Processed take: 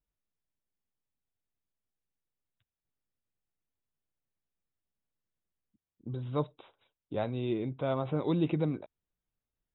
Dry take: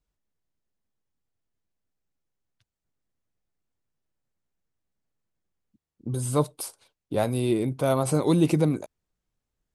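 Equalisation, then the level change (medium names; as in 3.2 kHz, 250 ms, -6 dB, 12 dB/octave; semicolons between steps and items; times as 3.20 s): brick-wall FIR low-pass 3.9 kHz; -8.0 dB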